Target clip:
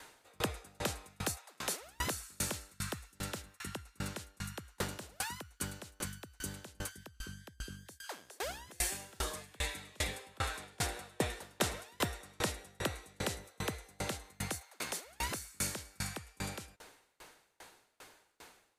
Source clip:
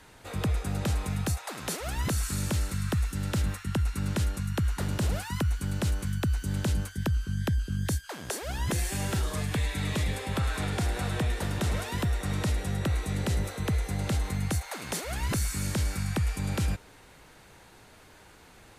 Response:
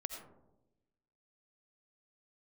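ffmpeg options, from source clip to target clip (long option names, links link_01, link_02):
-af "bass=frequency=250:gain=-13,treble=frequency=4000:gain=3,aeval=exprs='val(0)*pow(10,-33*if(lt(mod(2.5*n/s,1),2*abs(2.5)/1000),1-mod(2.5*n/s,1)/(2*abs(2.5)/1000),(mod(2.5*n/s,1)-2*abs(2.5)/1000)/(1-2*abs(2.5)/1000))/20)':channel_layout=same,volume=4dB"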